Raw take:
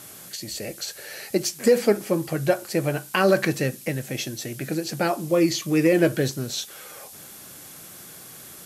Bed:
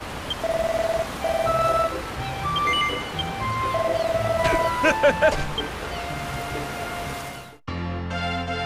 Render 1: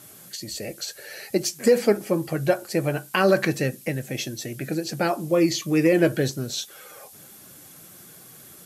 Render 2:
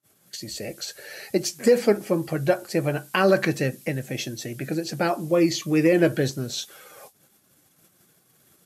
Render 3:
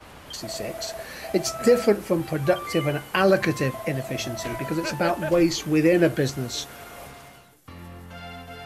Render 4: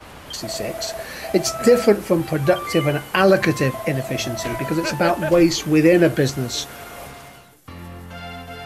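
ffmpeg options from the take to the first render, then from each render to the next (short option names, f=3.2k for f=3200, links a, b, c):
-af "afftdn=nr=6:nf=-44"
-af "agate=range=-34dB:threshold=-44dB:ratio=16:detection=peak,highshelf=f=7.9k:g=-4"
-filter_complex "[1:a]volume=-12.5dB[a];[0:a][a]amix=inputs=2:normalize=0"
-af "volume=5dB,alimiter=limit=-3dB:level=0:latency=1"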